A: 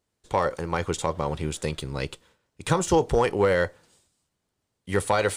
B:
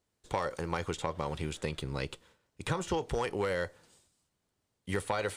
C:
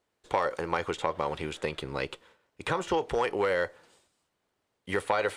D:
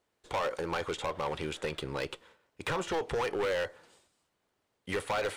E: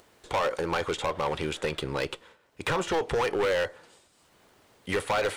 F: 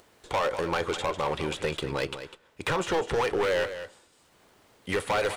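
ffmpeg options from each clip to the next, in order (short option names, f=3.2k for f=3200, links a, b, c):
-filter_complex "[0:a]acrossover=split=1500|3600[a][b][c];[a]acompressor=threshold=-29dB:ratio=4[d];[b]acompressor=threshold=-38dB:ratio=4[e];[c]acompressor=threshold=-46dB:ratio=4[f];[d][e][f]amix=inputs=3:normalize=0,volume=-2dB"
-af "bass=f=250:g=-11,treble=f=4k:g=-9,volume=6dB"
-af "asoftclip=type=hard:threshold=-27.5dB"
-af "acompressor=mode=upward:threshold=-52dB:ratio=2.5,volume=5dB"
-af "aecho=1:1:201:0.282"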